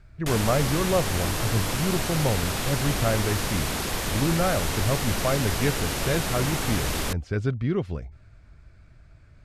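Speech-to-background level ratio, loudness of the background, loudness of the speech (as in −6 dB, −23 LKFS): 0.5 dB, −28.0 LKFS, −27.5 LKFS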